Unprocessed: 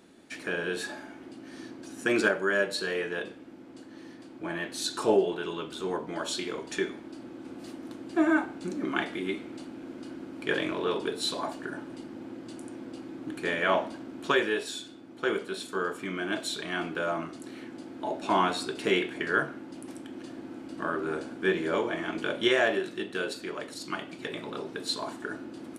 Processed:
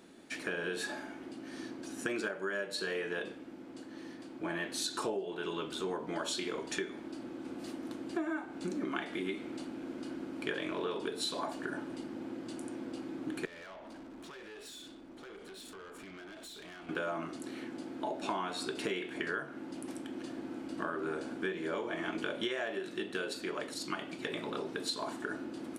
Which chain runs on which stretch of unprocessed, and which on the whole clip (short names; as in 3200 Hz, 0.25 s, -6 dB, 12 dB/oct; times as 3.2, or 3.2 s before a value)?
13.45–16.89 compressor 16:1, threshold -39 dBFS + tube stage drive 45 dB, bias 0.4
whole clip: bell 100 Hz -4 dB 0.99 oct; compressor 12:1, threshold -32 dBFS